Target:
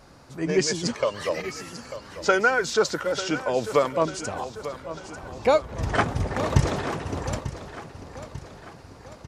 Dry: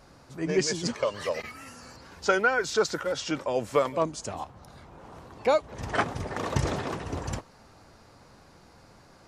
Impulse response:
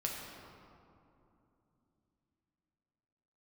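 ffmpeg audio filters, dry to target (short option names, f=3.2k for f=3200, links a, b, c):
-filter_complex "[0:a]asettb=1/sr,asplit=3[a][b][c];[a]atrim=end=5.234[d];[b]atrim=start=5.23:end=6.6,asetpts=PTS-STARTPTS,afade=t=in:d=0.004:c=qsin,afade=t=out:st=1.366:d=0.004:c=qsin,lowshelf=f=130:g=10[e];[c]atrim=start=6.596[f];[d][e]acrossfade=d=0.004:c1=hsin:c2=qsin[g];[g][f]acrossfade=d=0.004:c1=qsin:c2=hsin,aecho=1:1:894|1788|2682|3576|4470:0.224|0.119|0.0629|0.0333|0.0177,volume=3dB"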